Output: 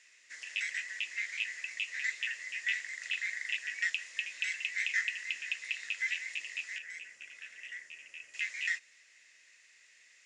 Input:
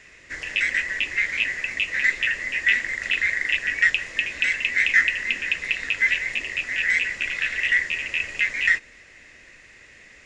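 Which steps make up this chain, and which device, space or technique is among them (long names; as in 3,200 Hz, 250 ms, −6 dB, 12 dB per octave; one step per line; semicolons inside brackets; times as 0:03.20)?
piezo pickup straight into a mixer (low-pass filter 8,300 Hz 12 dB per octave; first difference)
0:06.78–0:08.34: octave-band graphic EQ 125/1,000/2,000/4,000/8,000 Hz +3/−5/−7/−12/−7 dB
level −3 dB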